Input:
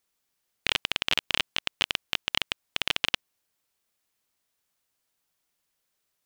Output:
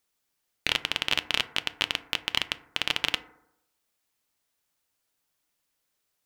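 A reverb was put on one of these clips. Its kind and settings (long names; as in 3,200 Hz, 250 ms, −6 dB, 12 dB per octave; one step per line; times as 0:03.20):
feedback delay network reverb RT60 0.81 s, low-frequency decay 0.95×, high-frequency decay 0.3×, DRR 11 dB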